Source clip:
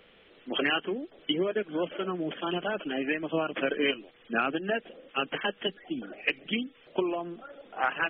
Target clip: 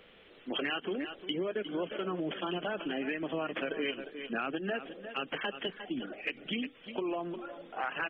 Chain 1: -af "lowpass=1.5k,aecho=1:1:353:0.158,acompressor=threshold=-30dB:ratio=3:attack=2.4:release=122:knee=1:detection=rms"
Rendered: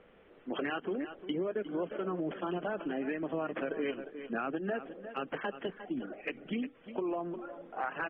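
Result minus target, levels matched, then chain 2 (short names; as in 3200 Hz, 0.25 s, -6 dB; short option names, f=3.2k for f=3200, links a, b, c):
2000 Hz band -2.5 dB
-af "aecho=1:1:353:0.158,acompressor=threshold=-30dB:ratio=3:attack=2.4:release=122:knee=1:detection=rms"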